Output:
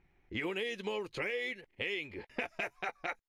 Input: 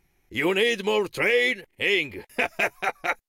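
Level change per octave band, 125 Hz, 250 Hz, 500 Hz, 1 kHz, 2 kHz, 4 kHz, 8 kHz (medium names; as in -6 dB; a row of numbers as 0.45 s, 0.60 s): -9.5 dB, -12.0 dB, -14.0 dB, -12.5 dB, -13.5 dB, -14.0 dB, -17.0 dB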